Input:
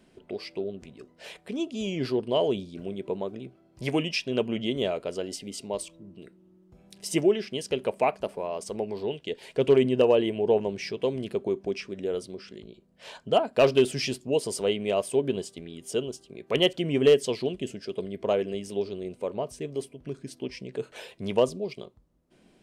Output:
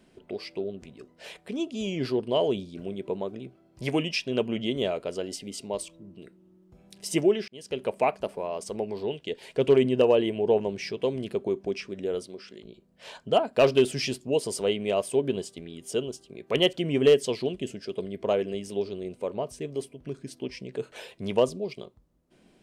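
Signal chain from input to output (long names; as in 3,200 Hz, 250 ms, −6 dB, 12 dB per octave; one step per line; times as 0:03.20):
0:07.48–0:08.05: fade in equal-power
0:12.23–0:12.65: low-shelf EQ 160 Hz −11.5 dB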